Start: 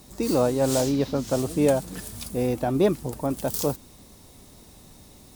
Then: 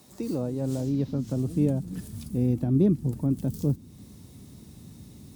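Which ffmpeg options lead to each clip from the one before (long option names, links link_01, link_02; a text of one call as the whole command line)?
ffmpeg -i in.wav -filter_complex "[0:a]acrossover=split=460[link_01][link_02];[link_02]acompressor=threshold=-44dB:ratio=2.5[link_03];[link_01][link_03]amix=inputs=2:normalize=0,highpass=110,asubboost=boost=7.5:cutoff=240,volume=-4.5dB" out.wav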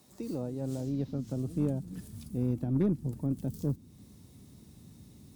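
ffmpeg -i in.wav -af "aeval=exprs='0.266*(cos(1*acos(clip(val(0)/0.266,-1,1)))-cos(1*PI/2))+0.015*(cos(6*acos(clip(val(0)/0.266,-1,1)))-cos(6*PI/2))+0.0075*(cos(8*acos(clip(val(0)/0.266,-1,1)))-cos(8*PI/2))':channel_layout=same,volume=-6.5dB" out.wav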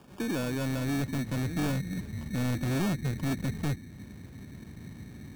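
ffmpeg -i in.wav -af "aresample=11025,asoftclip=type=tanh:threshold=-35dB,aresample=44100,acrusher=samples=22:mix=1:aa=0.000001,volume=9dB" out.wav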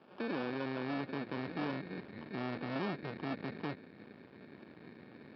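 ffmpeg -i in.wav -af "aresample=11025,aeval=exprs='max(val(0),0)':channel_layout=same,aresample=44100,highpass=270,lowpass=3000,volume=1.5dB" out.wav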